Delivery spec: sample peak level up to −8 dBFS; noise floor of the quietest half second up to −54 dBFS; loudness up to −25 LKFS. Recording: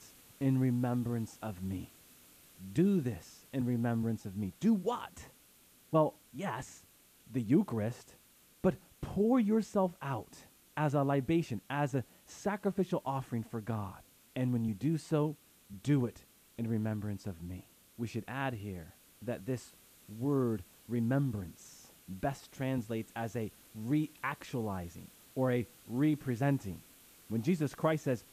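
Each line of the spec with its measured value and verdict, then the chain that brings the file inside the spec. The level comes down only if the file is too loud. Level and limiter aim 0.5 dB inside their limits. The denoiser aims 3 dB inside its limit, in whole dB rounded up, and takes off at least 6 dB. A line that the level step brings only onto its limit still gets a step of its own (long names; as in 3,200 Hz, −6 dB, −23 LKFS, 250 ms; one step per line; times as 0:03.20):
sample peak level −16.0 dBFS: in spec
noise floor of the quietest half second −63 dBFS: in spec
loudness −35.0 LKFS: in spec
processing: no processing needed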